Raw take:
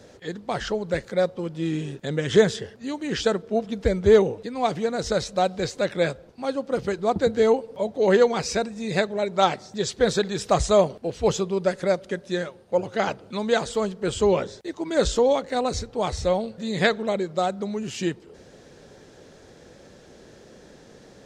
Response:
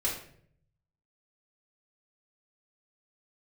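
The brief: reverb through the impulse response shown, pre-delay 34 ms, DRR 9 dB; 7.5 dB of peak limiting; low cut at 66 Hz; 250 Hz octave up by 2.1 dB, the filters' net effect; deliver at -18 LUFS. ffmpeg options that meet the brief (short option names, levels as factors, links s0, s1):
-filter_complex "[0:a]highpass=66,equalizer=f=250:t=o:g=3,alimiter=limit=0.266:level=0:latency=1,asplit=2[s0][s1];[1:a]atrim=start_sample=2205,adelay=34[s2];[s1][s2]afir=irnorm=-1:irlink=0,volume=0.168[s3];[s0][s3]amix=inputs=2:normalize=0,volume=2.11"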